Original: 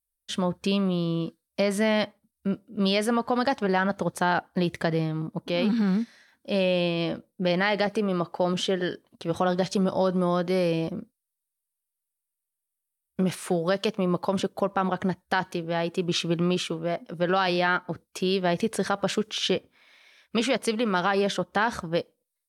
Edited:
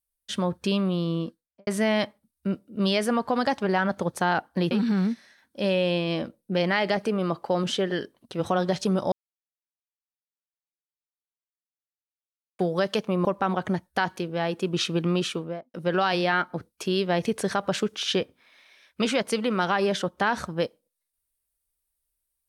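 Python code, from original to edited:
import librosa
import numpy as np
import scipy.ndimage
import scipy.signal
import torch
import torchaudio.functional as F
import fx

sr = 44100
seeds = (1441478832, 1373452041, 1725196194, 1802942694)

y = fx.studio_fade_out(x, sr, start_s=1.15, length_s=0.52)
y = fx.studio_fade_out(y, sr, start_s=16.71, length_s=0.38)
y = fx.edit(y, sr, fx.cut(start_s=4.71, length_s=0.9),
    fx.silence(start_s=10.02, length_s=3.47),
    fx.cut(start_s=14.15, length_s=0.45), tone=tone)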